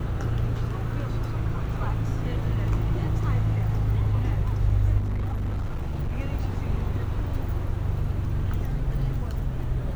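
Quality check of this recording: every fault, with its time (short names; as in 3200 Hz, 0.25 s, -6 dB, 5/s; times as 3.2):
4.98–6.18 clipped -24 dBFS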